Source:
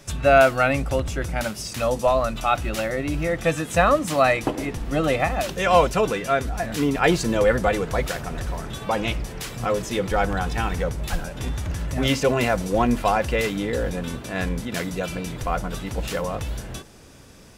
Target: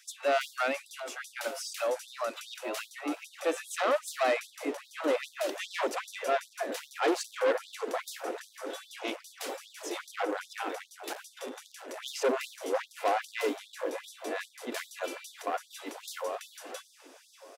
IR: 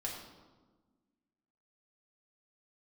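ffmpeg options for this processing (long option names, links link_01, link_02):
-filter_complex "[0:a]acrossover=split=600|1700[link_01][link_02][link_03];[link_01]dynaudnorm=framelen=730:gausssize=9:maxgain=11.5dB[link_04];[link_04][link_02][link_03]amix=inputs=3:normalize=0,asoftclip=type=tanh:threshold=-15.5dB,asplit=2[link_05][link_06];[link_06]adelay=591,lowpass=frequency=2500:poles=1,volume=-12dB,asplit=2[link_07][link_08];[link_08]adelay=591,lowpass=frequency=2500:poles=1,volume=0.54,asplit=2[link_09][link_10];[link_10]adelay=591,lowpass=frequency=2500:poles=1,volume=0.54,asplit=2[link_11][link_12];[link_12]adelay=591,lowpass=frequency=2500:poles=1,volume=0.54,asplit=2[link_13][link_14];[link_14]adelay=591,lowpass=frequency=2500:poles=1,volume=0.54,asplit=2[link_15][link_16];[link_16]adelay=591,lowpass=frequency=2500:poles=1,volume=0.54[link_17];[link_05][link_07][link_09][link_11][link_13][link_15][link_17]amix=inputs=7:normalize=0,afftfilt=real='re*gte(b*sr/1024,250*pow(3500/250,0.5+0.5*sin(2*PI*2.5*pts/sr)))':imag='im*gte(b*sr/1024,250*pow(3500/250,0.5+0.5*sin(2*PI*2.5*pts/sr)))':win_size=1024:overlap=0.75,volume=-6dB"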